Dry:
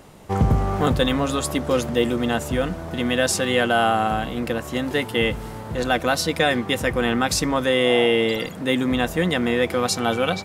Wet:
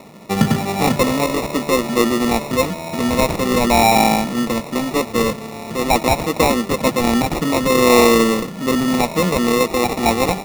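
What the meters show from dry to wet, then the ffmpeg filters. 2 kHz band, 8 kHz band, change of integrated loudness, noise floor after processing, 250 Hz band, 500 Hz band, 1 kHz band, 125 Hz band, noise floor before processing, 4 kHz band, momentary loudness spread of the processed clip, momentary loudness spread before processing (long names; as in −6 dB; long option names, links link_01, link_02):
+1.5 dB, +5.0 dB, +4.5 dB, −31 dBFS, +6.0 dB, +4.0 dB, +6.5 dB, +1.5 dB, −35 dBFS, +1.5 dB, 8 LU, 7 LU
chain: -af "aphaser=in_gain=1:out_gain=1:delay=2.9:decay=0.27:speed=0.25:type=triangular,highpass=frequency=140:width=0.5412,highpass=frequency=140:width=1.3066,equalizer=frequency=220:width_type=q:width=4:gain=6,equalizer=frequency=640:width_type=q:width=4:gain=5,equalizer=frequency=5500:width_type=q:width=4:gain=-6,lowpass=frequency=9200:width=0.5412,lowpass=frequency=9200:width=1.3066,acrusher=samples=28:mix=1:aa=0.000001,volume=3dB"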